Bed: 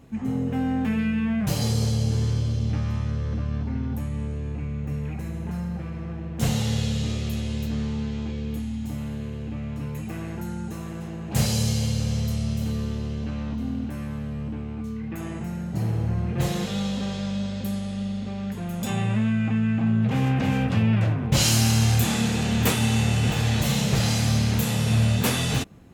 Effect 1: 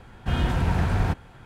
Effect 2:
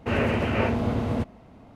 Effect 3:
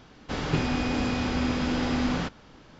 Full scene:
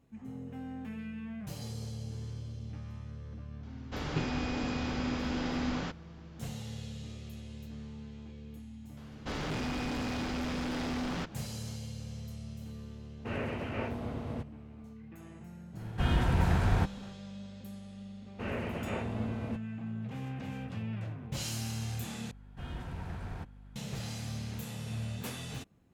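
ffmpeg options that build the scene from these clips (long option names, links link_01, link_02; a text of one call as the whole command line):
ffmpeg -i bed.wav -i cue0.wav -i cue1.wav -i cue2.wav -filter_complex "[3:a]asplit=2[link_01][link_02];[2:a]asplit=2[link_03][link_04];[1:a]asplit=2[link_05][link_06];[0:a]volume=-17dB[link_07];[link_02]volume=28.5dB,asoftclip=hard,volume=-28.5dB[link_08];[link_06]aeval=exprs='val(0)+0.0224*(sin(2*PI*50*n/s)+sin(2*PI*2*50*n/s)/2+sin(2*PI*3*50*n/s)/3+sin(2*PI*4*50*n/s)/4+sin(2*PI*5*50*n/s)/5)':channel_layout=same[link_09];[link_07]asplit=2[link_10][link_11];[link_10]atrim=end=22.314[link_12];[link_09]atrim=end=1.45,asetpts=PTS-STARTPTS,volume=-17.5dB[link_13];[link_11]atrim=start=23.756[link_14];[link_01]atrim=end=2.79,asetpts=PTS-STARTPTS,volume=-7dB,afade=type=in:duration=0.004:curve=hsin,afade=type=out:start_time=2.786:duration=0.004:curve=hsin,adelay=3630[link_15];[link_08]atrim=end=2.79,asetpts=PTS-STARTPTS,volume=-4dB,afade=type=in:duration=0.004:curve=hsin,afade=type=out:start_time=2.786:duration=0.004:curve=hsin,adelay=8970[link_16];[link_03]atrim=end=1.75,asetpts=PTS-STARTPTS,volume=-12dB,afade=type=in:duration=0.004:curve=hsin,afade=type=out:start_time=1.746:duration=0.004:curve=hsin,adelay=13190[link_17];[link_05]atrim=end=1.45,asetpts=PTS-STARTPTS,volume=-4dB,afade=type=in:duration=0.1,afade=type=out:start_time=1.35:duration=0.1,adelay=693252S[link_18];[link_04]atrim=end=1.75,asetpts=PTS-STARTPTS,volume=-12.5dB,afade=type=in:duration=0.004:curve=hsin,afade=type=out:start_time=1.746:duration=0.004:curve=hsin,adelay=18330[link_19];[link_12][link_13]acrossfade=duration=0.004:curve1=hsin:curve2=hsin[link_20];[link_20][link_14]acrossfade=duration=0.004:curve1=hsin:curve2=hsin[link_21];[link_21][link_15][link_16][link_17][link_18][link_19]amix=inputs=6:normalize=0" out.wav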